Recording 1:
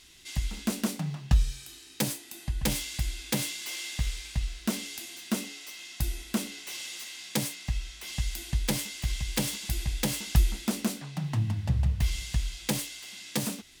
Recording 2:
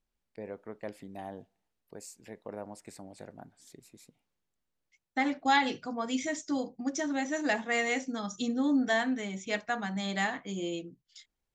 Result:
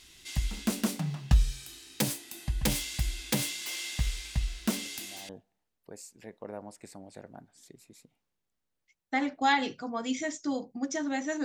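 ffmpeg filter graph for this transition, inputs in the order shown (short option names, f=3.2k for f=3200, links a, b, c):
-filter_complex "[1:a]asplit=2[a][b];[0:a]apad=whole_dur=11.44,atrim=end=11.44,atrim=end=5.292[c];[b]atrim=start=1.328:end=7.48[d];[a]atrim=start=0.89:end=1.33,asetpts=PTS-STARTPTS,volume=-10dB,afade=t=in:d=0.004:c=hsin,afade=t=out:st=0.436:d=0.004:c=hsin,adelay=213885S[e];[c][d]acrossfade=d=0.004:c1=hsin:c2=hsin[f];[f][e]amix=inputs=2:normalize=0"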